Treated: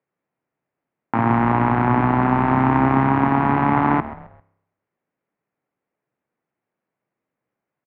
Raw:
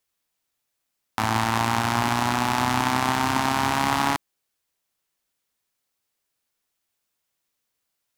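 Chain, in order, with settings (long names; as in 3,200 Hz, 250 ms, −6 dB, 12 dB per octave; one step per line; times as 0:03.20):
speed change +4%
elliptic band-pass filter 130–2,200 Hz, stop band 70 dB
tilt shelving filter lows +7.5 dB, about 1,100 Hz
echo with shifted repeats 132 ms, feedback 38%, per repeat −63 Hz, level −15.5 dB
on a send at −18 dB: convolution reverb RT60 0.75 s, pre-delay 30 ms
on the sum: level +3.5 dB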